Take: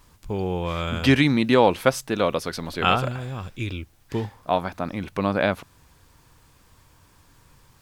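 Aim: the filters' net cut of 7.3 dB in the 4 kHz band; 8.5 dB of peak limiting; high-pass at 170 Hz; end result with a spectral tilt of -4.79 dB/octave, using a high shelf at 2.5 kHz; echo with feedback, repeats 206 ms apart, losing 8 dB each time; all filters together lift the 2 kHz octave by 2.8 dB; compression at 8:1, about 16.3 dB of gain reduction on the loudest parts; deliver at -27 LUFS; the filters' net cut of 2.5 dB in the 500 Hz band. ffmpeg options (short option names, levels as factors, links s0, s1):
-af "highpass=170,equalizer=f=500:t=o:g=-3,equalizer=f=2000:t=o:g=9,highshelf=f=2500:g=-6,equalizer=f=4000:t=o:g=-9,acompressor=threshold=0.0316:ratio=8,alimiter=limit=0.0708:level=0:latency=1,aecho=1:1:206|412|618|824|1030:0.398|0.159|0.0637|0.0255|0.0102,volume=3.16"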